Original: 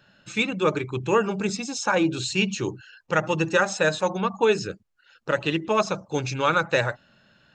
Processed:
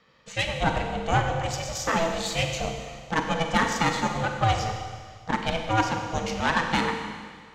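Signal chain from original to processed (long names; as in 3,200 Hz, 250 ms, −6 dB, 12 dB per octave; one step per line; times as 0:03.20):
harmonic generator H 6 −19 dB, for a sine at −6 dBFS
ring modulation 330 Hz
four-comb reverb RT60 1.8 s, combs from 33 ms, DRR 4 dB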